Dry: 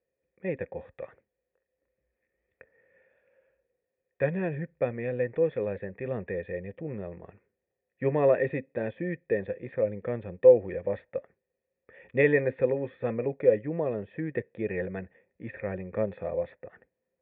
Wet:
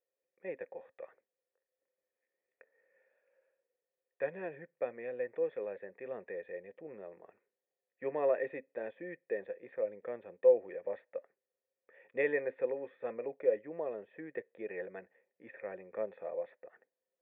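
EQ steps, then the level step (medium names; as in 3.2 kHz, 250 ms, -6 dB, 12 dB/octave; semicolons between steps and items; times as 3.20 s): high-pass 450 Hz 12 dB/octave; treble shelf 2.6 kHz -8 dB; -5.5 dB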